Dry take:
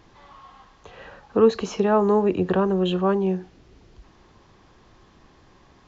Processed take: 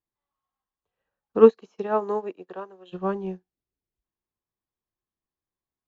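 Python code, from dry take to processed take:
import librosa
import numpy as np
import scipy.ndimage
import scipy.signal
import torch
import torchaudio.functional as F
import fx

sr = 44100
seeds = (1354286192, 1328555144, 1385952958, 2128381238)

y = fx.highpass(x, sr, hz=fx.line((1.38, 190.0), (2.92, 570.0)), slope=12, at=(1.38, 2.92), fade=0.02)
y = fx.upward_expand(y, sr, threshold_db=-43.0, expansion=2.5)
y = F.gain(torch.from_numpy(y), 5.0).numpy()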